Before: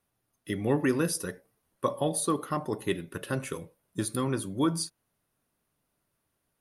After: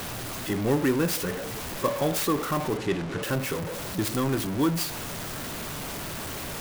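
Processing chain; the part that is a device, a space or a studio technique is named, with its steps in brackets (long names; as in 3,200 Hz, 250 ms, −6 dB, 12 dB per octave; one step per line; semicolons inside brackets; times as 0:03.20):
early CD player with a faulty converter (converter with a step at zero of −27.5 dBFS; converter with an unsteady clock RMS 0.031 ms)
0:02.77–0:03.23: high-frequency loss of the air 72 metres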